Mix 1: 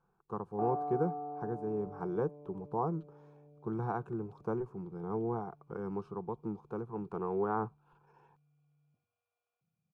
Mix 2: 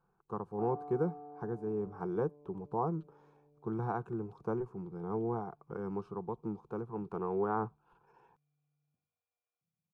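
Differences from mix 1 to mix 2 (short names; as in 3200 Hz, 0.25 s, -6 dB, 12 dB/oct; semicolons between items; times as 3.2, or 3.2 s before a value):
background -9.5 dB; reverb: on, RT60 0.35 s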